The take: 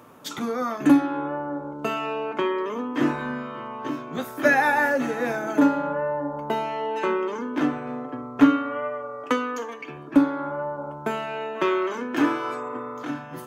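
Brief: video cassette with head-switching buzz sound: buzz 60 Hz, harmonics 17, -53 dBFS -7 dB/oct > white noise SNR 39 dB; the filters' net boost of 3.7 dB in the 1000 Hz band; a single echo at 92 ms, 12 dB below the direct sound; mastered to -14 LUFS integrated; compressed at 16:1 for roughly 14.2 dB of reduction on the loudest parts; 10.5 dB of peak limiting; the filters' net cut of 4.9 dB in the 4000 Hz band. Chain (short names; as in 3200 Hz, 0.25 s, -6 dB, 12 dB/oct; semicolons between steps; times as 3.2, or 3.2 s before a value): bell 1000 Hz +5 dB; bell 4000 Hz -7.5 dB; compressor 16:1, threshold -24 dBFS; limiter -21.5 dBFS; echo 92 ms -12 dB; buzz 60 Hz, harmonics 17, -53 dBFS -7 dB/oct; white noise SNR 39 dB; gain +16.5 dB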